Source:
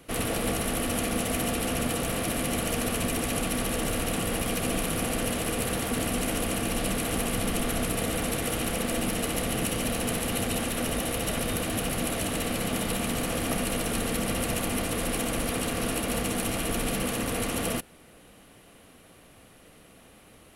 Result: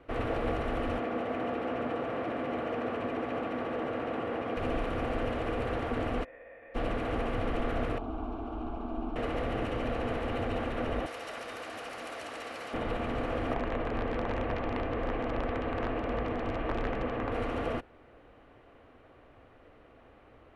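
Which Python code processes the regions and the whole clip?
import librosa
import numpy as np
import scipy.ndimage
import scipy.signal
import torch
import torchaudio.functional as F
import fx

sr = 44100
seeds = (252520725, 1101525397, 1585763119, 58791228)

y = fx.chain(x, sr, fx.highpass(hz=170.0, slope=12),
    fx.high_shelf(hz=4200.0, db=-11.0), at=(0.98, 4.57))
y = fx.envelope_flatten(y, sr, power=0.1, at=(6.23, 6.74), fade=0.02)
y = fx.formant_cascade(y, sr, vowel='e', at=(6.23, 6.74), fade=0.02)
y = fx.chain(y, sr, fx.spacing_loss(db_at_10k=30),
    fx.fixed_phaser(hz=510.0, stages=6), at=(7.98, 9.16))
y = fx.chain(y, sr, fx.highpass(hz=1300.0, slope=6),
    fx.band_shelf(hz=7400.0, db=10.0, octaves=1.7), at=(11.06, 12.74))
y = fx.chain(y, sr, fx.lowpass(hz=2800.0, slope=12),
    fx.overflow_wrap(gain_db=20.5),
    fx.notch(hz=1400.0, q=21.0), at=(13.54, 17.32))
y = scipy.signal.sosfilt(scipy.signal.butter(2, 1600.0, 'lowpass', fs=sr, output='sos'), y)
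y = fx.peak_eq(y, sr, hz=180.0, db=-14.5, octaves=0.58)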